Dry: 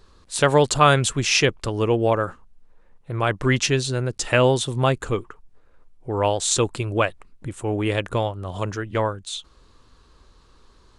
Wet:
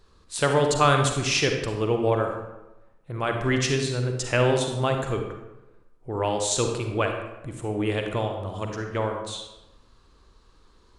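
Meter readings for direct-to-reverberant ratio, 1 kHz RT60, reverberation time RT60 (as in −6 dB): 3.5 dB, 1.0 s, 1.0 s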